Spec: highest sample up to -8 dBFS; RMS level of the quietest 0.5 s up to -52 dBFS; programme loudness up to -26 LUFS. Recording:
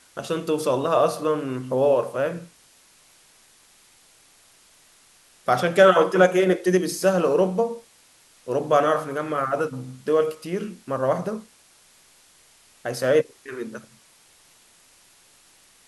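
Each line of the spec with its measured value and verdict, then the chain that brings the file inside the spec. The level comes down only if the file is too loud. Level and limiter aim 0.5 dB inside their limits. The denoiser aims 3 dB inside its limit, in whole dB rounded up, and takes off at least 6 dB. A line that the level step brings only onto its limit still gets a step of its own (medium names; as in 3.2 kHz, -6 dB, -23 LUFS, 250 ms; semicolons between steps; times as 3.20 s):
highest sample -4.0 dBFS: fail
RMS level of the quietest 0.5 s -56 dBFS: pass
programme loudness -22.5 LUFS: fail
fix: trim -4 dB; peak limiter -8.5 dBFS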